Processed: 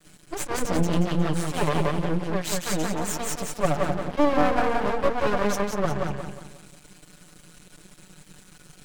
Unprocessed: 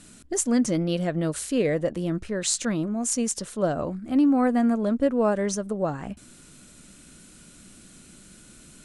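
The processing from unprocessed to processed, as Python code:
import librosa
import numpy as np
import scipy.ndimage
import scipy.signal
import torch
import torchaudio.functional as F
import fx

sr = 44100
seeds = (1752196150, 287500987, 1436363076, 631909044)

y = fx.lower_of_two(x, sr, delay_ms=5.5)
y = fx.high_shelf(y, sr, hz=9000.0, db=-10.5)
y = y + 0.92 * np.pad(y, (int(6.8 * sr / 1000.0), 0))[:len(y)]
y = fx.echo_feedback(y, sr, ms=180, feedback_pct=39, wet_db=-3)
y = np.maximum(y, 0.0)
y = y * 10.0 ** (2.0 / 20.0)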